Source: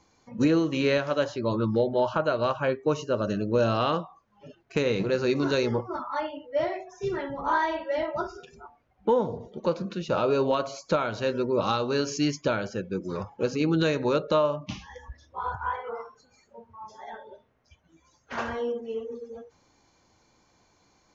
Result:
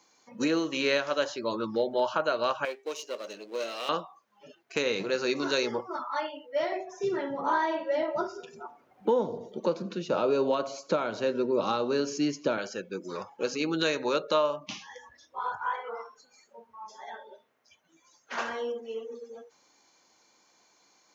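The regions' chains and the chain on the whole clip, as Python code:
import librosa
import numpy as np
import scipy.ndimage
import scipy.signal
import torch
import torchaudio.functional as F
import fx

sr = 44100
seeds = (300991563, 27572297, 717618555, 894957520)

y = fx.chain(x, sr, fx.halfwave_gain(db=-7.0),
    fx.highpass(hz=460.0, slope=12),
    fx.band_shelf(hz=1100.0, db=-8.0, octaves=1.7), at=(2.65, 3.89))
y = fx.chain(y, sr, fx.tilt_shelf(db=6.5, hz=710.0),
    fx.echo_feedback(ms=85, feedback_pct=54, wet_db=-24.0),
    fx.band_squash(depth_pct=40), at=(6.72, 12.58))
y = scipy.signal.sosfilt(scipy.signal.butter(2, 220.0, 'highpass', fs=sr, output='sos'), y)
y = fx.tilt_eq(y, sr, slope=2.0)
y = F.gain(torch.from_numpy(y), -1.0).numpy()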